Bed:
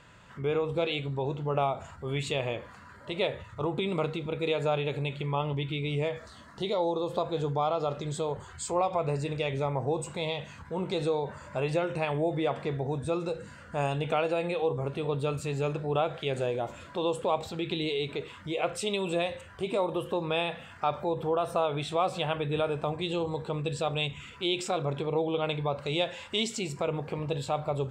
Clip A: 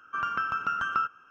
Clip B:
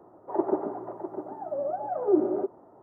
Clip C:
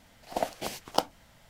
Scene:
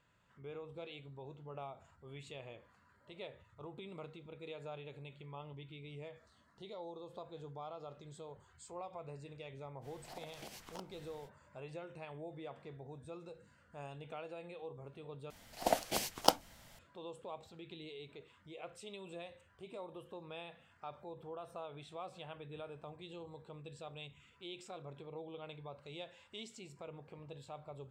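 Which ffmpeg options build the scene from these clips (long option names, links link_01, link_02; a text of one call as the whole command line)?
ffmpeg -i bed.wav -i cue0.wav -i cue1.wav -i cue2.wav -filter_complex "[3:a]asplit=2[link_01][link_02];[0:a]volume=-19dB[link_03];[link_01]acompressor=threshold=-44dB:ratio=6:attack=3.2:release=140:knee=1:detection=peak[link_04];[link_02]highshelf=frequency=4200:gain=5.5[link_05];[link_03]asplit=2[link_06][link_07];[link_06]atrim=end=15.304[link_08];[link_05]atrim=end=1.49,asetpts=PTS-STARTPTS,volume=-2dB[link_09];[link_07]atrim=start=16.786[link_10];[link_04]atrim=end=1.49,asetpts=PTS-STARTPTS,volume=-3dB,afade=type=in:duration=0.05,afade=type=out:start_time=1.44:duration=0.05,adelay=9810[link_11];[link_08][link_09]acrossfade=duration=0.004:curve1=hsin:curve2=hsin[link_12];[link_12][link_10]acrossfade=duration=0.004:curve1=hsin:curve2=hsin[link_13];[link_13][link_11]amix=inputs=2:normalize=0" out.wav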